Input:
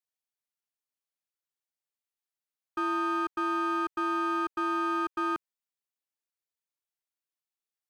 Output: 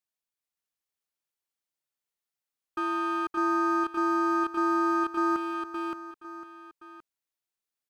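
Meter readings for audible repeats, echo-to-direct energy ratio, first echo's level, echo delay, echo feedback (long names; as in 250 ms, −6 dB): 3, −2.5 dB, −3.0 dB, 570 ms, repeats not evenly spaced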